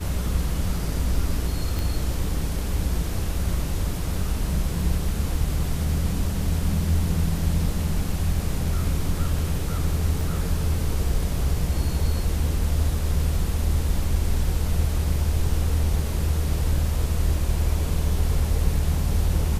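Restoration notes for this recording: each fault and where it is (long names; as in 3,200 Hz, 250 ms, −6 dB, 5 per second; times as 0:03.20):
0:01.79: click
0:10.21: drop-out 2.1 ms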